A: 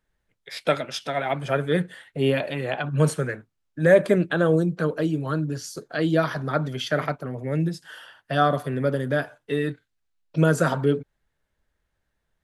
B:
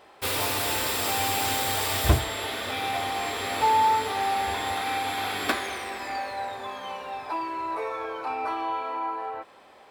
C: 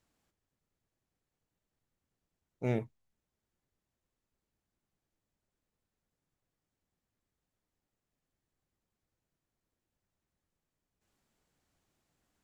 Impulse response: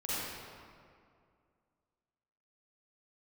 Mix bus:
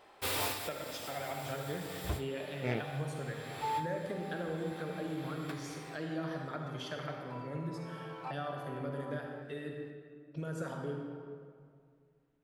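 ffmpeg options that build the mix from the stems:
-filter_complex "[0:a]acompressor=threshold=-22dB:ratio=6,volume=-17dB,asplit=3[a][b][c];[b]volume=-4.5dB[d];[1:a]volume=-6.5dB[e];[2:a]adynamicsmooth=sensitivity=7:basefreq=1.4k,equalizer=f=2.9k:w=0.62:g=12,volume=-5dB[f];[c]apad=whole_len=436714[g];[e][g]sidechaincompress=threshold=-57dB:ratio=5:attack=31:release=705[h];[3:a]atrim=start_sample=2205[i];[d][i]afir=irnorm=-1:irlink=0[j];[a][h][f][j]amix=inputs=4:normalize=0"

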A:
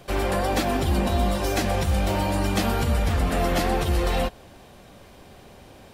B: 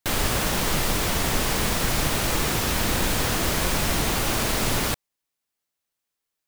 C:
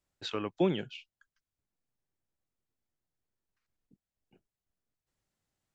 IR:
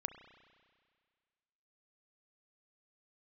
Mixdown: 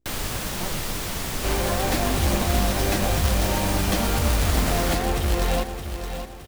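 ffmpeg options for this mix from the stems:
-filter_complex "[0:a]lowshelf=f=130:g=2,acrusher=bits=2:mode=log:mix=0:aa=0.000001,adelay=1350,volume=-2dB,asplit=2[a][b];[b]volume=-9dB[c];[1:a]acrusher=bits=8:dc=4:mix=0:aa=0.000001,acrossover=split=220|3000[d][e][f];[e]acompressor=threshold=-27dB:ratio=6[g];[d][g][f]amix=inputs=3:normalize=0,volume=-4.5dB[h];[2:a]aeval=exprs='val(0)+0.000631*(sin(2*PI*60*n/s)+sin(2*PI*2*60*n/s)/2+sin(2*PI*3*60*n/s)/3+sin(2*PI*4*60*n/s)/4+sin(2*PI*5*60*n/s)/5)':c=same,aeval=exprs='abs(val(0))':c=same,volume=-5.5dB[i];[c]aecho=0:1:618|1236|1854|2472|3090:1|0.39|0.152|0.0593|0.0231[j];[a][h][i][j]amix=inputs=4:normalize=0"

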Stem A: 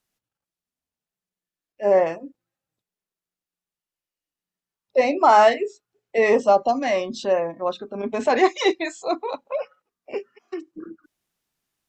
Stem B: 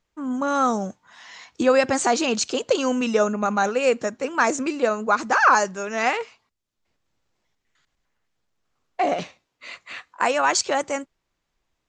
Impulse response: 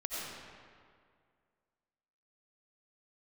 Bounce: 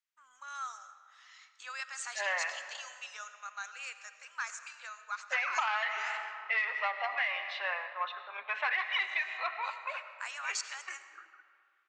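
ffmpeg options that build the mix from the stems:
-filter_complex "[0:a]lowpass=f=2.7k:w=0.5412,lowpass=f=2.7k:w=1.3066,acontrast=79,adelay=350,volume=-2.5dB,asplit=2[a][b];[b]volume=-11dB[c];[1:a]volume=-15dB,asplit=2[d][e];[e]volume=-12dB[f];[2:a]atrim=start_sample=2205[g];[c][f]amix=inputs=2:normalize=0[h];[h][g]afir=irnorm=-1:irlink=0[i];[a][d][i]amix=inputs=3:normalize=0,highpass=f=1.3k:w=0.5412,highpass=f=1.3k:w=1.3066,acompressor=threshold=-28dB:ratio=12"

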